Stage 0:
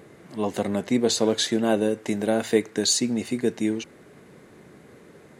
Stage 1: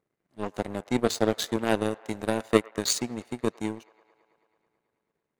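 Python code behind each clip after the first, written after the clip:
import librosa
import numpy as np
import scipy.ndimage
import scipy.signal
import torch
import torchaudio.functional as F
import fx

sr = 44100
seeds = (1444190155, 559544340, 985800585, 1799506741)

y = fx.power_curve(x, sr, exponent=2.0)
y = fx.echo_wet_bandpass(y, sr, ms=109, feedback_pct=77, hz=1200.0, wet_db=-21.5)
y = y * librosa.db_to_amplitude(5.0)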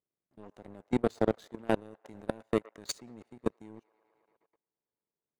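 y = fx.level_steps(x, sr, step_db=24)
y = fx.high_shelf(y, sr, hz=2000.0, db=-9.5)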